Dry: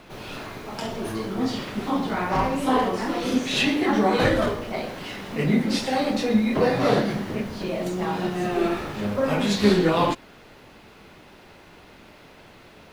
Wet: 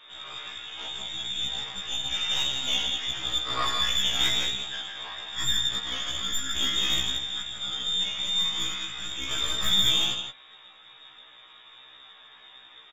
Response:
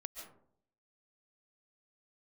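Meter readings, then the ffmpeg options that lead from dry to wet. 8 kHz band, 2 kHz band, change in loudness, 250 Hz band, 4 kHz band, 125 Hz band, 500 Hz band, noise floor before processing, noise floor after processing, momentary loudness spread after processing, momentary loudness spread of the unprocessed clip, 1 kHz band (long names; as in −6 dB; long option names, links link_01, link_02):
+6.5 dB, −4.5 dB, −2.5 dB, −22.0 dB, +9.5 dB, −14.5 dB, −22.0 dB, −49 dBFS, −52 dBFS, 11 LU, 12 LU, −11.5 dB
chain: -filter_complex "[0:a]equalizer=frequency=740:width_type=o:width=2.3:gain=-11.5,aecho=1:1:6.3:0.36,asplit=2[link_01][link_02];[link_02]acompressor=threshold=-40dB:ratio=6,volume=-3dB[link_03];[link_01][link_03]amix=inputs=2:normalize=0,lowpass=frequency=3200:width_type=q:width=0.5098,lowpass=frequency=3200:width_type=q:width=0.6013,lowpass=frequency=3200:width_type=q:width=0.9,lowpass=frequency=3200:width_type=q:width=2.563,afreqshift=-3800,aecho=1:1:163:0.501,aeval=exprs='0.335*(cos(1*acos(clip(val(0)/0.335,-1,1)))-cos(1*PI/2))+0.0422*(cos(4*acos(clip(val(0)/0.335,-1,1)))-cos(4*PI/2))+0.00335*(cos(7*acos(clip(val(0)/0.335,-1,1)))-cos(7*PI/2))+0.00944*(cos(8*acos(clip(val(0)/0.335,-1,1)))-cos(8*PI/2))':channel_layout=same,afftfilt=real='re*1.73*eq(mod(b,3),0)':imag='im*1.73*eq(mod(b,3),0)':win_size=2048:overlap=0.75"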